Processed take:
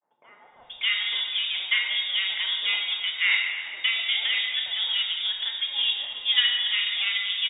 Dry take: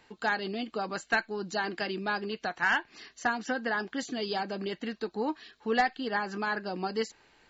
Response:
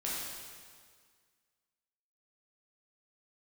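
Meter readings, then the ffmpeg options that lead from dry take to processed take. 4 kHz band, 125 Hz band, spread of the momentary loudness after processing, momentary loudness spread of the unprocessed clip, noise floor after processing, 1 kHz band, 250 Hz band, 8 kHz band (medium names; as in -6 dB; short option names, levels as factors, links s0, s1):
+20.0 dB, under -20 dB, 5 LU, 7 LU, -55 dBFS, -14.0 dB, under -30 dB, no reading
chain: -filter_complex "[0:a]aeval=exprs='if(lt(val(0),0),0.447*val(0),val(0))':c=same,agate=range=0.0224:threshold=0.00141:ratio=3:detection=peak,acrossover=split=120|2300[s0][s1][s2];[s0]alimiter=level_in=8.41:limit=0.0631:level=0:latency=1,volume=0.119[s3];[s2]acompressor=threshold=0.00126:ratio=6[s4];[s3][s1][s4]amix=inputs=3:normalize=0,lowpass=f=3100:t=q:w=0.5098,lowpass=f=3100:t=q:w=0.6013,lowpass=f=3100:t=q:w=0.9,lowpass=f=3100:t=q:w=2.563,afreqshift=-3700,acrossover=split=150|920[s5][s6][s7];[s5]adelay=340[s8];[s7]adelay=590[s9];[s8][s6][s9]amix=inputs=3:normalize=0,asplit=2[s10][s11];[1:a]atrim=start_sample=2205,lowshelf=f=120:g=9,adelay=31[s12];[s11][s12]afir=irnorm=-1:irlink=0,volume=0.531[s13];[s10][s13]amix=inputs=2:normalize=0,volume=2.24"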